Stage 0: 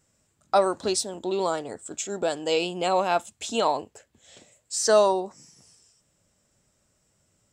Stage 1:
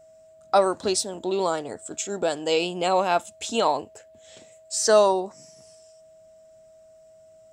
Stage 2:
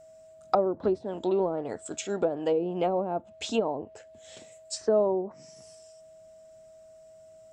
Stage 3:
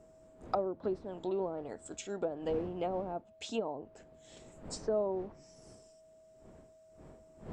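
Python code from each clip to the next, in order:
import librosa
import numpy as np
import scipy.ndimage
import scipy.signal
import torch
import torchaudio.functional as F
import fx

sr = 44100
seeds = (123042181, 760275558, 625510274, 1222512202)

y1 = x + 10.0 ** (-51.0 / 20.0) * np.sin(2.0 * np.pi * 640.0 * np.arange(len(x)) / sr)
y1 = y1 * 10.0 ** (1.5 / 20.0)
y2 = fx.env_lowpass_down(y1, sr, base_hz=440.0, full_db=-19.0)
y3 = fx.dmg_wind(y2, sr, seeds[0], corner_hz=400.0, level_db=-45.0)
y3 = y3 * 10.0 ** (-8.5 / 20.0)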